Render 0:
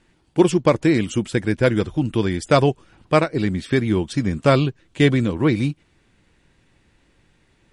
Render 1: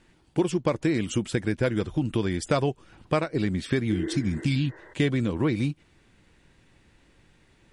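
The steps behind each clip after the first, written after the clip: spectral replace 3.94–4.91 s, 320–2100 Hz both; compression 3:1, threshold -23 dBFS, peak gain reduction 11 dB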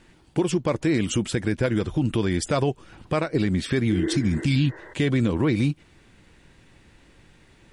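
peak limiter -19 dBFS, peak gain reduction 7.5 dB; trim +5.5 dB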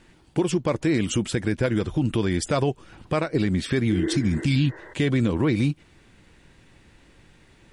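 no audible change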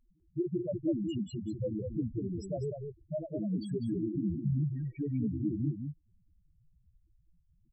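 loudest bins only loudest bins 2; echo from a far wall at 34 m, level -6 dB; trim -6.5 dB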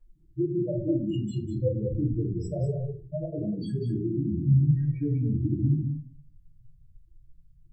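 reverberation RT60 0.35 s, pre-delay 3 ms, DRR -7 dB; trim -7.5 dB

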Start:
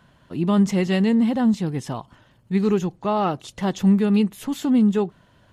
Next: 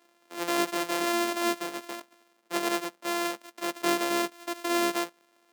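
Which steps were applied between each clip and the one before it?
sorted samples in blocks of 128 samples; Bessel high-pass 410 Hz, order 6; trim -6 dB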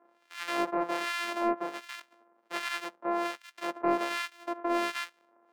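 harmonic tremolo 1.3 Hz, depth 100%, crossover 1.4 kHz; overdrive pedal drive 12 dB, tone 1.9 kHz, clips at -14 dBFS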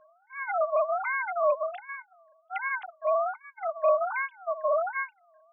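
formants replaced by sine waves; trim +4 dB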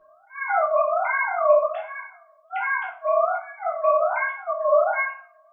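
simulated room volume 50 m³, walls mixed, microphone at 1.2 m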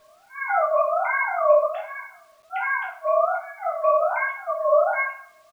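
word length cut 10-bit, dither none; feedback delay 67 ms, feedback 60%, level -21 dB

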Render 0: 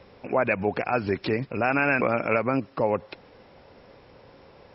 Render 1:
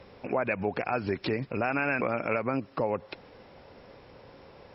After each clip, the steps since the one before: compression 2:1, threshold -28 dBFS, peak gain reduction 6 dB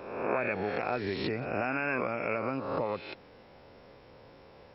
reverse spectral sustain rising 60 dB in 1.07 s; trim -5.5 dB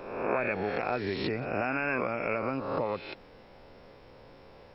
added noise brown -62 dBFS; trim +1 dB

